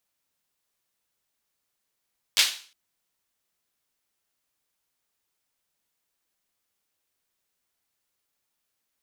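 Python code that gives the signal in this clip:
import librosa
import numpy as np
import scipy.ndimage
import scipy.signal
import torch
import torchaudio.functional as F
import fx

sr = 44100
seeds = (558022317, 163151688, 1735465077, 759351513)

y = fx.drum_clap(sr, seeds[0], length_s=0.36, bursts=3, spacing_ms=10, hz=3500.0, decay_s=0.41)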